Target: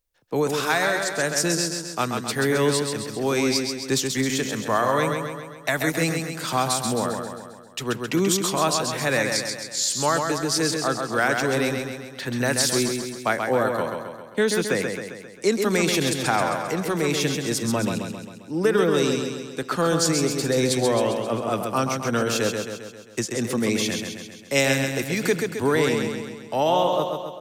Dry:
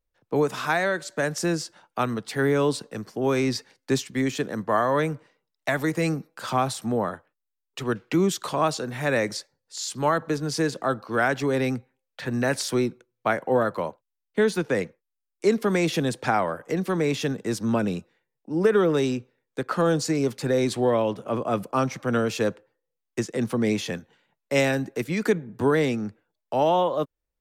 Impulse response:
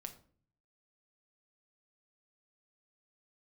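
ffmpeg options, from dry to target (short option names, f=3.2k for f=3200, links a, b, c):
-af "highshelf=f=2.9k:g=11,aecho=1:1:133|266|399|532|665|798|931:0.562|0.315|0.176|0.0988|0.0553|0.031|0.0173,volume=-1dB"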